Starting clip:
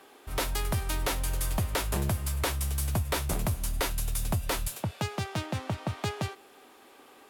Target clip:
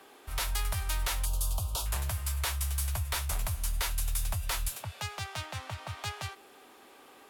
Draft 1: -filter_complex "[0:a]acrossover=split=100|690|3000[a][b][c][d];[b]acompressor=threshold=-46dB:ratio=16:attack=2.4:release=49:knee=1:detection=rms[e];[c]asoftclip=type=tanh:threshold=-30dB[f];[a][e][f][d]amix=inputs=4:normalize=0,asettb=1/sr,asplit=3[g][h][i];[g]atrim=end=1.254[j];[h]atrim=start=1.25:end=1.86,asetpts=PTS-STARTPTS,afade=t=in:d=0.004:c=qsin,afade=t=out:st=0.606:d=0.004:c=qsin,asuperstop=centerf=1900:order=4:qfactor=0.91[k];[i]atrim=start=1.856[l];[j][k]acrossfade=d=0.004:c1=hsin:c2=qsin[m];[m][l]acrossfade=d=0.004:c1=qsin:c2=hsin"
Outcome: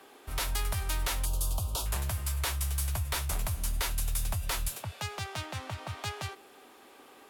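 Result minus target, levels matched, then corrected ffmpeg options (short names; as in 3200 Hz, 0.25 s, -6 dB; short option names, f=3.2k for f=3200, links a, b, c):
compressor: peak gain reduction -9.5 dB
-filter_complex "[0:a]acrossover=split=100|690|3000[a][b][c][d];[b]acompressor=threshold=-56dB:ratio=16:attack=2.4:release=49:knee=1:detection=rms[e];[c]asoftclip=type=tanh:threshold=-30dB[f];[a][e][f][d]amix=inputs=4:normalize=0,asettb=1/sr,asplit=3[g][h][i];[g]atrim=end=1.254[j];[h]atrim=start=1.25:end=1.86,asetpts=PTS-STARTPTS,afade=t=in:d=0.004:c=qsin,afade=t=out:st=0.606:d=0.004:c=qsin,asuperstop=centerf=1900:order=4:qfactor=0.91[k];[i]atrim=start=1.856[l];[j][k]acrossfade=d=0.004:c1=hsin:c2=qsin[m];[m][l]acrossfade=d=0.004:c1=qsin:c2=hsin"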